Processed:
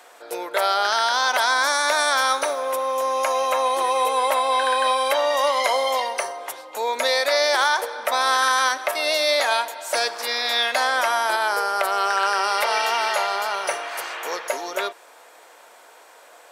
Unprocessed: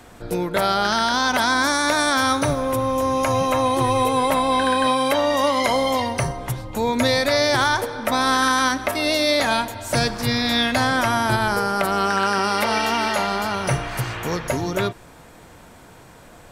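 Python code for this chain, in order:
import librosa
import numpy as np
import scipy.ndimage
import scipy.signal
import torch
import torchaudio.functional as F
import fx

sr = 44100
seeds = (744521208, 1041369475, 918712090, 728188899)

y = scipy.signal.sosfilt(scipy.signal.butter(4, 480.0, 'highpass', fs=sr, output='sos'), x)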